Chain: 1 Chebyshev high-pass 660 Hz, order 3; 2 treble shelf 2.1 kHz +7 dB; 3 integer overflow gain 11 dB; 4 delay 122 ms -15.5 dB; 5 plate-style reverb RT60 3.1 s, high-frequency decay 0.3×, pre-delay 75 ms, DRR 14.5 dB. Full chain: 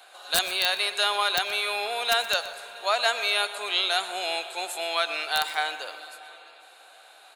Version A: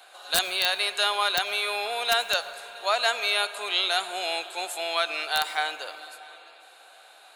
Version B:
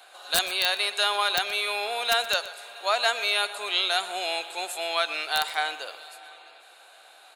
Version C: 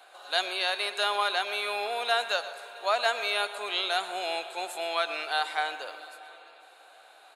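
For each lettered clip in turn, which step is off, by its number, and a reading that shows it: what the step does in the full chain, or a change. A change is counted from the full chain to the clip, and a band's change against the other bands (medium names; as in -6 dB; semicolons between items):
4, echo-to-direct -12.0 dB to -14.5 dB; 5, echo-to-direct -12.0 dB to -15.5 dB; 2, 8 kHz band -8.0 dB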